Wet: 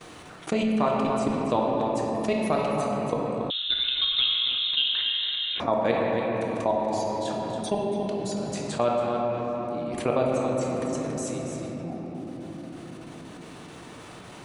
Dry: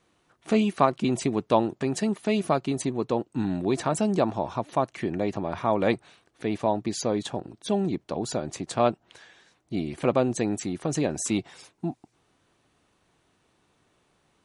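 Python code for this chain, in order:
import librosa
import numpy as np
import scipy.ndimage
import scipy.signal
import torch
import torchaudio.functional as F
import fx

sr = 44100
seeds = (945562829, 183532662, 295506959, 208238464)

y = fx.low_shelf(x, sr, hz=69.0, db=-9.5)
y = fx.level_steps(y, sr, step_db=23)
y = y + 10.0 ** (-10.0 / 20.0) * np.pad(y, (int(281 * sr / 1000.0), 0))[:len(y)]
y = fx.room_shoebox(y, sr, seeds[0], volume_m3=180.0, walls='hard', distance_m=0.49)
y = fx.freq_invert(y, sr, carrier_hz=3900, at=(3.5, 5.6))
y = fx.env_flatten(y, sr, amount_pct=50)
y = y * 10.0 ** (-1.5 / 20.0)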